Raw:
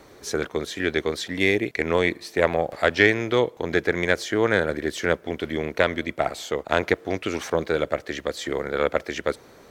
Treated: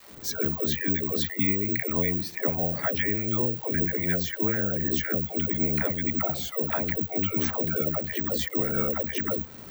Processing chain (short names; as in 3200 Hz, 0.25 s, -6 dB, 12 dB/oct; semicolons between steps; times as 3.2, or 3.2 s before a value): recorder AGC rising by 11 dB/s; spectral gate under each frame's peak -20 dB strong; resonant low shelf 290 Hz +8 dB, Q 1.5; compressor, threshold -22 dBFS, peak gain reduction 11.5 dB; dispersion lows, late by 0.129 s, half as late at 420 Hz; crackle 420/s -35 dBFS; careless resampling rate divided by 2×, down filtered, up zero stuff; gain -2.5 dB